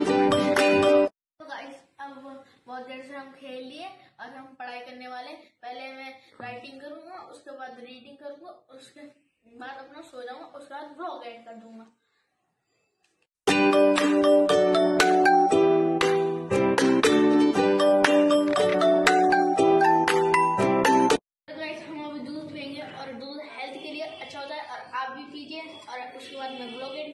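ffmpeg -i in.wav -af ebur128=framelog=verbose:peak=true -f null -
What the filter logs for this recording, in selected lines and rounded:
Integrated loudness:
  I:         -21.1 LUFS
  Threshold: -35.3 LUFS
Loudness range:
  LRA:        22.1 LU
  Threshold: -45.3 LUFS
  LRA low:   -42.7 LUFS
  LRA high:  -20.6 LUFS
True peak:
  Peak:       -8.1 dBFS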